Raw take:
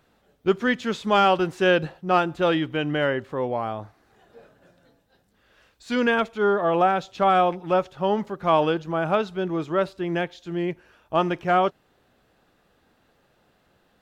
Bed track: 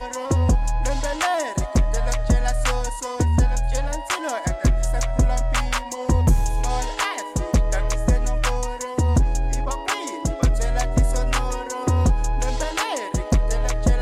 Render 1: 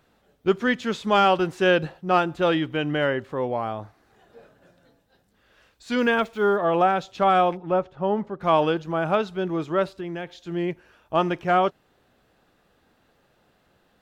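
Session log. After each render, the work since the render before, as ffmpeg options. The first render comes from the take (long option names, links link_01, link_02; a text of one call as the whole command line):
ffmpeg -i in.wav -filter_complex "[0:a]asplit=3[link_01][link_02][link_03];[link_01]afade=type=out:start_time=5.98:duration=0.02[link_04];[link_02]acrusher=bits=8:mix=0:aa=0.5,afade=type=in:start_time=5.98:duration=0.02,afade=type=out:start_time=6.56:duration=0.02[link_05];[link_03]afade=type=in:start_time=6.56:duration=0.02[link_06];[link_04][link_05][link_06]amix=inputs=3:normalize=0,asettb=1/sr,asplit=3[link_07][link_08][link_09];[link_07]atrim=end=7.574[link_10];[link_08]atrim=start=7.57:end=8.41,asetpts=PTS-STARTPTS,afade=type=in:duration=0.004:curve=qsin,afade=type=out:start_time=0.836:duration=0.004:curve=qsin,lowpass=frequency=1100:poles=1[link_11];[link_09]atrim=start=8.406[link_12];[link_10][link_11]acrossfade=duration=0.004:curve1=hsin:curve2=qsin[link_13];[link_13][link_12]acrossfade=duration=0.004:curve1=qsin:curve2=hsin,asettb=1/sr,asplit=3[link_14][link_15][link_16];[link_14]atrim=end=9.864[link_17];[link_15]atrim=start=9.86:end=10.38,asetpts=PTS-STARTPTS,afade=type=in:duration=0.004:curve=qsin,afade=type=out:start_time=0.516:duration=0.004:curve=qsin,acompressor=threshold=-28dB:ratio=6:attack=3.2:release=140:knee=1:detection=peak[link_18];[link_16]atrim=start=10.376[link_19];[link_17][link_18]acrossfade=duration=0.004:curve1=hsin:curve2=qsin[link_20];[link_20][link_19]acrossfade=duration=0.004:curve1=qsin:curve2=hsin" out.wav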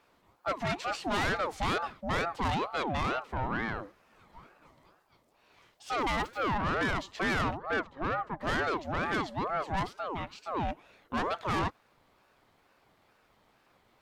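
ffmpeg -i in.wav -af "asoftclip=type=tanh:threshold=-24dB,aeval=exprs='val(0)*sin(2*PI*710*n/s+710*0.45/2.2*sin(2*PI*2.2*n/s))':channel_layout=same" out.wav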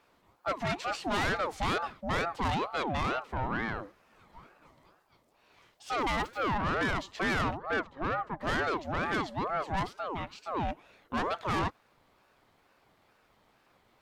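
ffmpeg -i in.wav -af anull out.wav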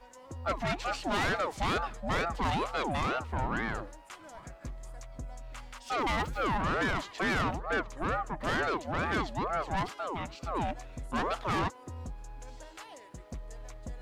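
ffmpeg -i in.wav -i bed.wav -filter_complex "[1:a]volume=-23.5dB[link_01];[0:a][link_01]amix=inputs=2:normalize=0" out.wav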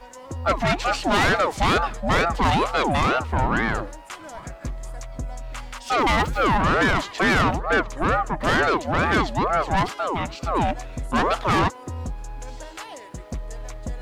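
ffmpeg -i in.wav -af "volume=10.5dB" out.wav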